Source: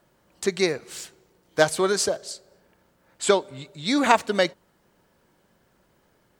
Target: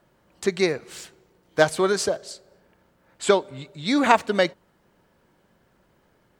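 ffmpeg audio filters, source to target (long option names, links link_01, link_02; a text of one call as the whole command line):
ffmpeg -i in.wav -af "bass=frequency=250:gain=1,treble=frequency=4000:gain=-5,volume=1dB" out.wav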